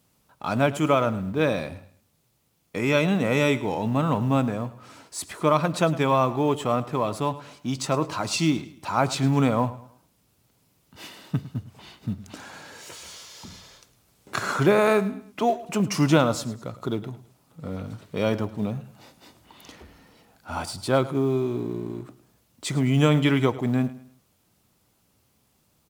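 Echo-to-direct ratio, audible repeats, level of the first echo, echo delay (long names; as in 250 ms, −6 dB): −16.5 dB, 2, −17.0 dB, 106 ms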